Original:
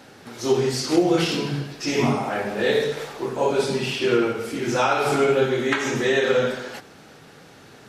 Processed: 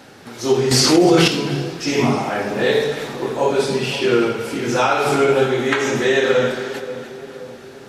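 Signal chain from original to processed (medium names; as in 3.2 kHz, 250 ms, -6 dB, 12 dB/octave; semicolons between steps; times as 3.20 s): on a send: two-band feedback delay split 1.1 kHz, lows 528 ms, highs 295 ms, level -13 dB; 0.71–1.28 s: on the sum: level flattener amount 70%; trim +3.5 dB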